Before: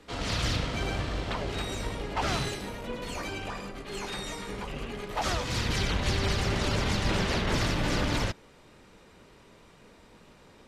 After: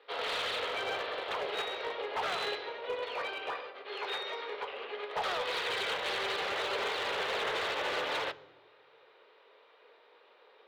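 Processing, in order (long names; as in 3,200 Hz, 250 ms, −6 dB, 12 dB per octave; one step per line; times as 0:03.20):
elliptic band-pass filter 440–3,800 Hz, stop band 40 dB
brickwall limiter −26 dBFS, peak gain reduction 7 dB
hard clipping −31.5 dBFS, distortion −17 dB
on a send at −12 dB: convolution reverb RT60 1.1 s, pre-delay 3 ms
on the sum: expander for the loud parts 1.5 to 1, over −47 dBFS
level +3.5 dB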